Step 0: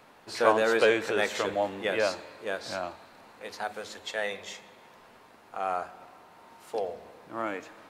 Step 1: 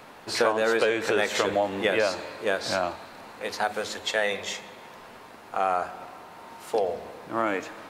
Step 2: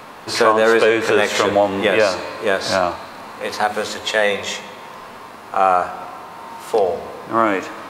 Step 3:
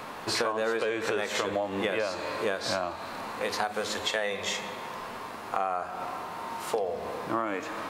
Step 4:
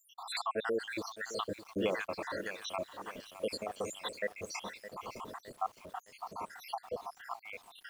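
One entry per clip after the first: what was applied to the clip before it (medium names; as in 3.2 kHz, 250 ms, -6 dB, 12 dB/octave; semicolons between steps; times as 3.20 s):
compression 8:1, threshold -28 dBFS, peak gain reduction 12.5 dB; trim +8.5 dB
harmonic-percussive split harmonic +5 dB; peaking EQ 1.1 kHz +6 dB 0.28 oct; trim +5.5 dB
compression 6:1, threshold -24 dBFS, peak gain reduction 14.5 dB; trim -2.5 dB
random holes in the spectrogram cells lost 81%; bit-crushed delay 613 ms, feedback 55%, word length 8-bit, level -12.5 dB; trim -1.5 dB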